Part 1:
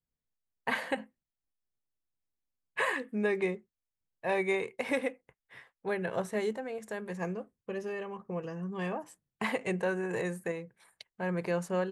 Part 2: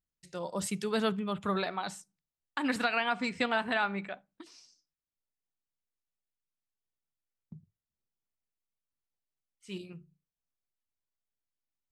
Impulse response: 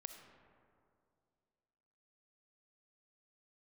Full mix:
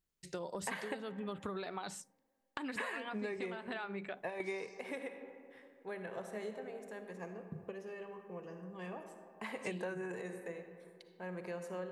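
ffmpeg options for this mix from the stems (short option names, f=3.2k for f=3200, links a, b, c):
-filter_complex "[0:a]highpass=170,volume=-2dB,asplit=2[a][b];[b]volume=-3dB[c];[1:a]equalizer=f=400:w=2.8:g=6,acompressor=threshold=-40dB:ratio=4,volume=3dB,asplit=2[d][e];[e]apad=whole_len=525356[f];[a][f]sidechaingate=range=-33dB:threshold=-57dB:ratio=16:detection=peak[g];[2:a]atrim=start_sample=2205[h];[c][h]afir=irnorm=-1:irlink=0[i];[g][d][i]amix=inputs=3:normalize=0,acompressor=threshold=-37dB:ratio=8"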